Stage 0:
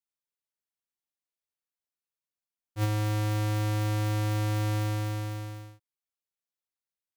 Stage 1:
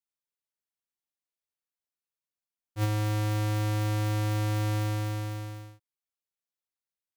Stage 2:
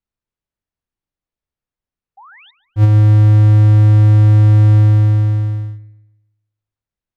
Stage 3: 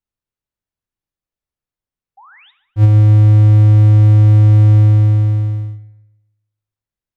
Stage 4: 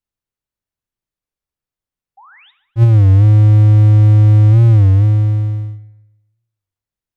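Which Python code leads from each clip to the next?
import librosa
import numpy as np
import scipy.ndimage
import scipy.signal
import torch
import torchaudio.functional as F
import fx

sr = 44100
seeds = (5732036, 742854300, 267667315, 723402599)

y1 = x
y2 = fx.spec_paint(y1, sr, seeds[0], shape='rise', start_s=2.17, length_s=0.34, low_hz=740.0, high_hz=3900.0, level_db=-46.0)
y2 = fx.riaa(y2, sr, side='playback')
y2 = fx.echo_wet_lowpass(y2, sr, ms=142, feedback_pct=37, hz=2800.0, wet_db=-15)
y2 = F.gain(torch.from_numpy(y2), 6.0).numpy()
y3 = fx.rev_fdn(y2, sr, rt60_s=0.72, lf_ratio=0.95, hf_ratio=0.85, size_ms=54.0, drr_db=12.5)
y3 = F.gain(torch.from_numpy(y3), -2.0).numpy()
y4 = fx.record_warp(y3, sr, rpm=33.33, depth_cents=160.0)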